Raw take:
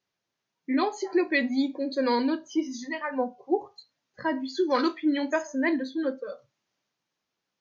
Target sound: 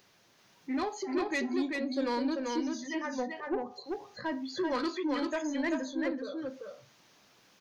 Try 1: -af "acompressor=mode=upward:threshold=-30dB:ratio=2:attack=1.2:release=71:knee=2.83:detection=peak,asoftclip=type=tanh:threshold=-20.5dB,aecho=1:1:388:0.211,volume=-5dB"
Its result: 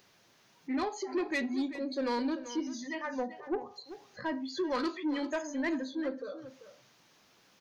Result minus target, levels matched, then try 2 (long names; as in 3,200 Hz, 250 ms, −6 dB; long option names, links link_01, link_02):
echo-to-direct −10 dB
-af "acompressor=mode=upward:threshold=-30dB:ratio=2:attack=1.2:release=71:knee=2.83:detection=peak,asoftclip=type=tanh:threshold=-20.5dB,aecho=1:1:388:0.668,volume=-5dB"